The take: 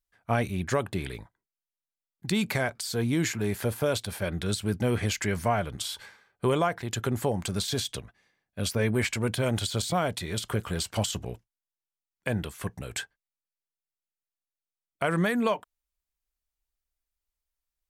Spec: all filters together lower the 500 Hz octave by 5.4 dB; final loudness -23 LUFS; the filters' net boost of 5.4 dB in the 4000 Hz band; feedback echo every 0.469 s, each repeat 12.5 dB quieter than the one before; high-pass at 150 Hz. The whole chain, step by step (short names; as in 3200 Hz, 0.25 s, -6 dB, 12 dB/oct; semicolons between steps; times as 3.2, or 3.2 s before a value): HPF 150 Hz; bell 500 Hz -7 dB; bell 4000 Hz +6.5 dB; feedback echo 0.469 s, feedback 24%, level -12.5 dB; gain +7 dB